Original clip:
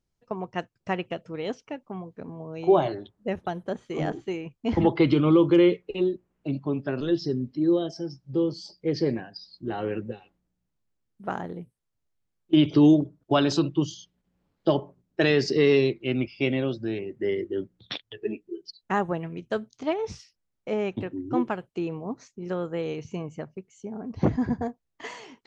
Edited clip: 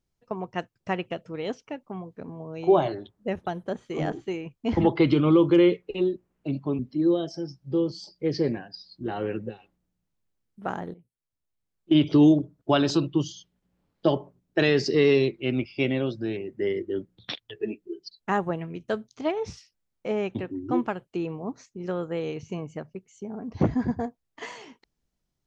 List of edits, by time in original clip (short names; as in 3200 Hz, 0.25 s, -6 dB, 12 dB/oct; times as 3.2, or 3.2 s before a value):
6.79–7.41 cut
11.56–12.65 fade in, from -17.5 dB